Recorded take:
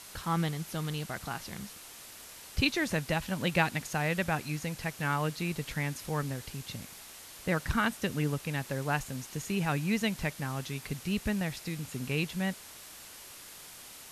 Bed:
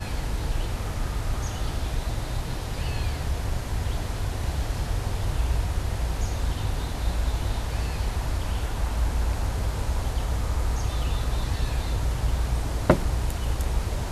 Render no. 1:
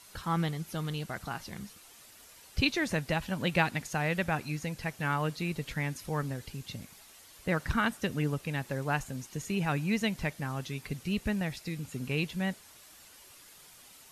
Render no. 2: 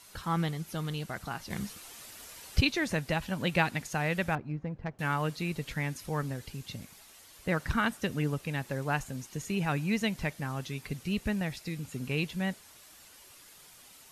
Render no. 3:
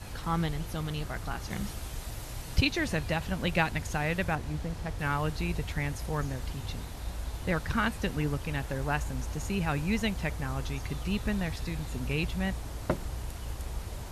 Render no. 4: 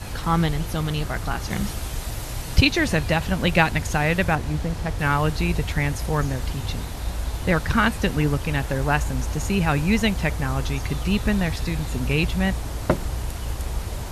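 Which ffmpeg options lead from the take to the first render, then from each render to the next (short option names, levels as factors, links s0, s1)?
-af "afftdn=nr=8:nf=-49"
-filter_complex "[0:a]asettb=1/sr,asplit=3[s0][s1][s2];[s0]atrim=end=1.504[s3];[s1]atrim=start=1.5:end=2.61,asetpts=PTS-STARTPTS,afade=t=in:d=0.004:c=qsin,afade=t=out:st=1.106:d=0.004:c=qsin,acontrast=61[s4];[s2]atrim=start=2.606[s5];[s3][s4]acrossfade=d=0.004:c1=hsin:c2=qsin[s6];[s6][s5]acrossfade=d=0.004:c1=qsin:c2=hsin,asettb=1/sr,asplit=3[s7][s8][s9];[s7]atrim=end=4.354[s10];[s8]atrim=start=4.35:end=4.99,asetpts=PTS-STARTPTS,afade=t=in:d=0.004:c=qsin,afade=t=out:st=0.636:d=0.004:c=qsin,adynamicsmooth=sensitivity=1:basefreq=860[s11];[s9]atrim=start=4.986[s12];[s10][s11]acrossfade=d=0.004:c1=hsin:c2=qsin[s13];[s13][s12]acrossfade=d=0.004:c1=qsin:c2=hsin"
-filter_complex "[1:a]volume=0.282[s0];[0:a][s0]amix=inputs=2:normalize=0"
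-af "volume=2.82"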